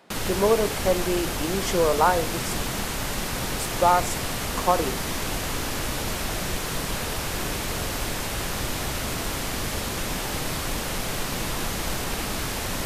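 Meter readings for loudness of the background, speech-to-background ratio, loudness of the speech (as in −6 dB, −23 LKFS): −28.0 LKFS, 3.0 dB, −25.0 LKFS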